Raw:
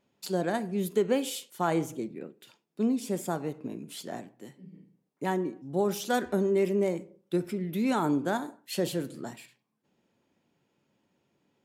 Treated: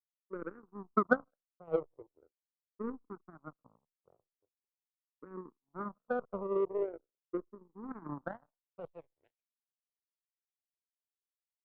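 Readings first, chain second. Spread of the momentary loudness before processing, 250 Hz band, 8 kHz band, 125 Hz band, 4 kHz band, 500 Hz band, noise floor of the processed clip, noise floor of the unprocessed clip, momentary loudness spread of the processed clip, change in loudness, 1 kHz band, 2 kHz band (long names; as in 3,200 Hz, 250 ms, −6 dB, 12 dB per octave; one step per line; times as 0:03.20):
15 LU, −12.5 dB, below −35 dB, −15.5 dB, below −30 dB, −8.0 dB, below −85 dBFS, −77 dBFS, 19 LU, −7.0 dB, −7.0 dB, −3.0 dB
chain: parametric band 490 Hz +10.5 dB 0.27 octaves
on a send: echo with shifted repeats 207 ms, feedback 36%, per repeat +68 Hz, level −24 dB
on the sum: low-pass filter sweep 420 Hz → 4,600 Hz, 0:08.07–0:09.90
in parallel at −6 dB: soft clipping −17 dBFS, distortion −11 dB
on the sum: power curve on the samples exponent 3
frequency shifter mixed with the dry sound −0.42 Hz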